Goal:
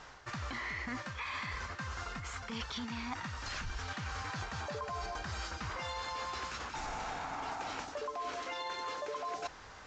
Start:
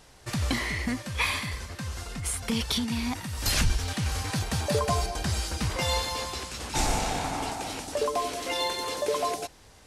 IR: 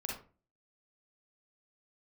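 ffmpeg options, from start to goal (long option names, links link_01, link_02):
-af "equalizer=frequency=1300:width=0.84:gain=13,alimiter=limit=-16.5dB:level=0:latency=1:release=57,areverse,acompressor=threshold=-35dB:ratio=6,areverse,volume=-2.5dB" -ar 16000 -c:a aac -b:a 64k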